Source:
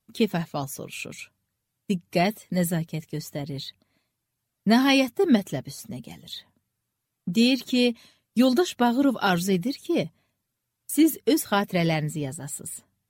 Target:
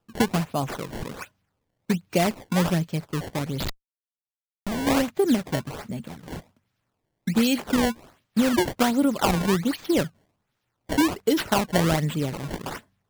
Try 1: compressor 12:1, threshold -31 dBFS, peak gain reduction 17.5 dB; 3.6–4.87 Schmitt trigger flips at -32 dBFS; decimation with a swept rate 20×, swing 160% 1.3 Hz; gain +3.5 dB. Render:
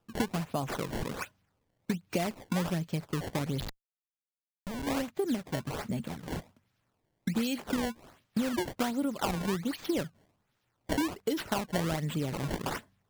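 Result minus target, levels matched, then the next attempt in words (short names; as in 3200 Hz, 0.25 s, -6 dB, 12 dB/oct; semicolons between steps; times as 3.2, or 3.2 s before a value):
compressor: peak gain reduction +10 dB
compressor 12:1, threshold -20 dBFS, peak gain reduction 7.5 dB; 3.6–4.87 Schmitt trigger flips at -32 dBFS; decimation with a swept rate 20×, swing 160% 1.3 Hz; gain +3.5 dB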